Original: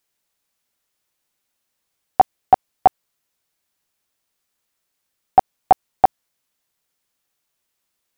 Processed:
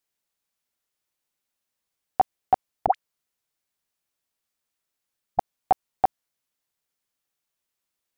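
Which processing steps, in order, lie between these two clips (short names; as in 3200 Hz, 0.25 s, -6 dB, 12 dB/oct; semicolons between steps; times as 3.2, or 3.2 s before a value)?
2.86–5.39 dispersion highs, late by 76 ms, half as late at 750 Hz; gain -7.5 dB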